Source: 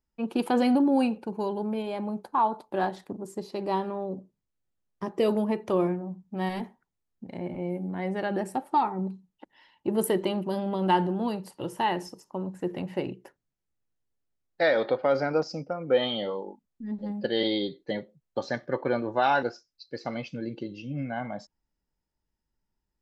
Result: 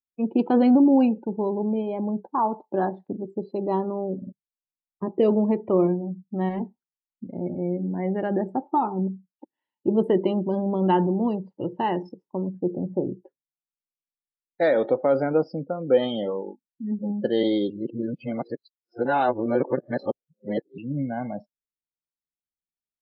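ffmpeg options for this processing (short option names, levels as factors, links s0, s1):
-filter_complex "[0:a]asettb=1/sr,asplit=3[s0][s1][s2];[s0]atrim=end=12.594[s3];[s1]atrim=start=12.59:end=13.11,asetpts=PTS-STARTPTS,afade=t=in:d=0.004:c=qsin,afade=t=out:st=0.516:d=0.004:c=qsin,lowpass=1000[s4];[s2]atrim=start=13.106[s5];[s3][s4]acrossfade=d=0.004:c1=hsin:c2=qsin[s6];[s6][s5]acrossfade=d=0.004:c1=qsin:c2=hsin,asplit=6[s7][s8][s9][s10][s11][s12];[s7]atrim=end=4.222[s13];[s8]atrim=start=4.168:end=4.222[s14];[s9]atrim=start=4.168:end=4.222[s15];[s10]atrim=start=4.318:end=17.702[s16];[s11]atrim=start=17.698:end=20.782,asetpts=PTS-STARTPTS,areverse[s17];[s12]atrim=start=20.778[s18];[s13][s14]acrossfade=d=0.004:c1=hsin:c2=hsin[s19];[s19][s15]acrossfade=d=0.004:c1=hsin:c2=hsin[s20];[s20][s16]acrossfade=d=0.004:c1=hsin:c2=hsin[s21];[s21][s17]acrossfade=d=0.004:c1=hsin:c2=hsin[s22];[s22][s18]acrossfade=d=0.004:c1=hsin:c2=hsin,afftdn=nr=27:nf=-39,lowpass=f=4400:w=0.5412,lowpass=f=4400:w=1.3066,equalizer=f=270:w=0.34:g=11,volume=0.562"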